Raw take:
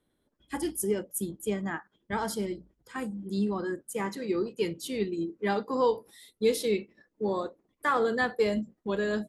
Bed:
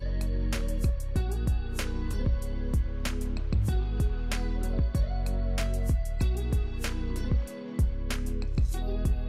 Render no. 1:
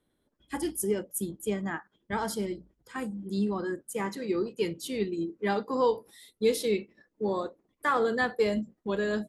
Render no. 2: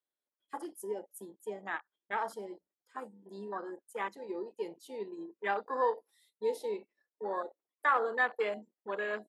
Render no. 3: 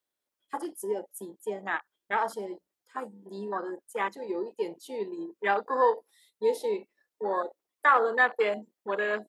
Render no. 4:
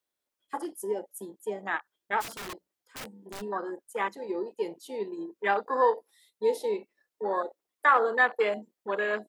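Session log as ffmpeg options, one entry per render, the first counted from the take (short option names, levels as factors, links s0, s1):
-af anull
-af "afwtdn=0.0158,highpass=640"
-af "volume=2.11"
-filter_complex "[0:a]asplit=3[s0][s1][s2];[s0]afade=t=out:st=2.2:d=0.02[s3];[s1]aeval=exprs='(mod(53.1*val(0)+1,2)-1)/53.1':c=same,afade=t=in:st=2.2:d=0.02,afade=t=out:st=3.4:d=0.02[s4];[s2]afade=t=in:st=3.4:d=0.02[s5];[s3][s4][s5]amix=inputs=3:normalize=0"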